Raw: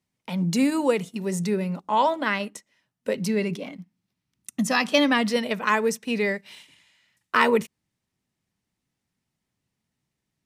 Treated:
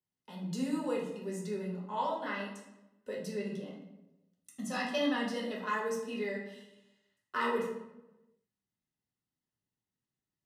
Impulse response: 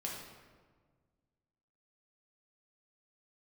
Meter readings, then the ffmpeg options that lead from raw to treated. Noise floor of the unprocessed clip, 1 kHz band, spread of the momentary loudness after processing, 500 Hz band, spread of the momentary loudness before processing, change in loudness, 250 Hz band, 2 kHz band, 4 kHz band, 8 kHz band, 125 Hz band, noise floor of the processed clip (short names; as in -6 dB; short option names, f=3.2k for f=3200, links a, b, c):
-83 dBFS, -11.5 dB, 18 LU, -10.5 dB, 13 LU, -12.0 dB, -11.5 dB, -13.0 dB, -13.0 dB, -14.0 dB, -13.0 dB, under -85 dBFS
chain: -filter_complex "[0:a]asuperstop=centerf=2300:order=8:qfactor=6.5[a];[1:a]atrim=start_sample=2205,asetrate=83790,aresample=44100[b];[a][b]afir=irnorm=-1:irlink=0,volume=-8dB"